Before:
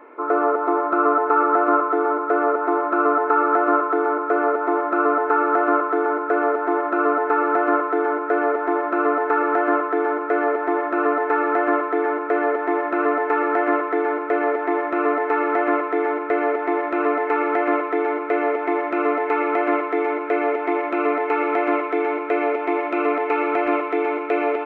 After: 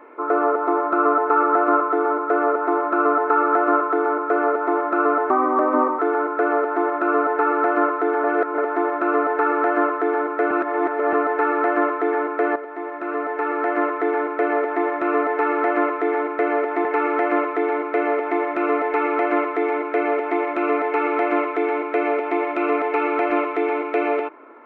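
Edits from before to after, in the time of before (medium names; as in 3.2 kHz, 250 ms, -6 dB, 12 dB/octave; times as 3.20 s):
5.30–5.90 s: speed 87%
8.15–8.49 s: reverse
10.42–11.04 s: reverse
12.47–13.99 s: fade in, from -12.5 dB
16.76–17.21 s: delete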